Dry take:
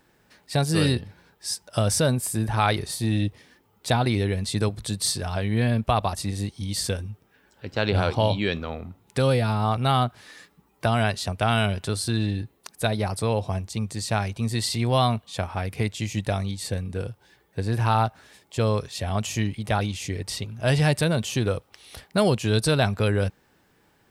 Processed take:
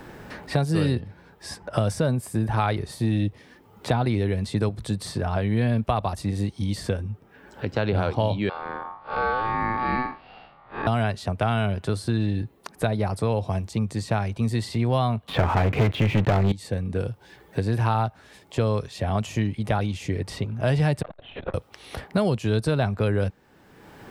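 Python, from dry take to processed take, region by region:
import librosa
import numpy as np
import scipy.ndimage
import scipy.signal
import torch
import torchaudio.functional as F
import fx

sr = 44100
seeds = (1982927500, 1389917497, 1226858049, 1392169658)

y = fx.chain(x, sr, fx.spec_blur(span_ms=132.0),
    fx.steep_lowpass(hz=3500.0, slope=48),
    fx.ring_mod(carrier_hz=1000.0), at=(8.49, 10.87))
y = fx.chain(y, sr, fx.lowpass(hz=3400.0, slope=24),
    fx.leveller(passes=5), at=(15.27, 16.52))
y = fx.chain(y, sr, fx.ladder_highpass(hz=500.0, resonance_pct=50),
    fx.lpc_vocoder(seeds[0], excitation='whisper', order=10),
    fx.transformer_sat(knee_hz=940.0), at=(21.02, 21.54))
y = fx.high_shelf(y, sr, hz=2600.0, db=-11.5)
y = fx.band_squash(y, sr, depth_pct=70)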